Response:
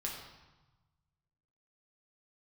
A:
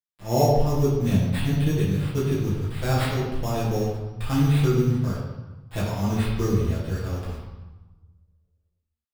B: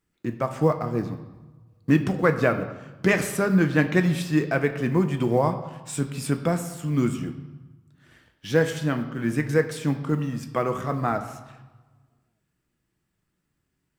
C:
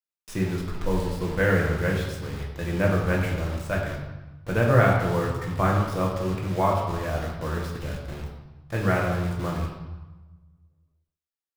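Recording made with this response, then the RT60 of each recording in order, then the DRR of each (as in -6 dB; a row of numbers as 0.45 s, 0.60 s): C; 1.1 s, 1.2 s, 1.1 s; -9.0 dB, 7.0 dB, -2.5 dB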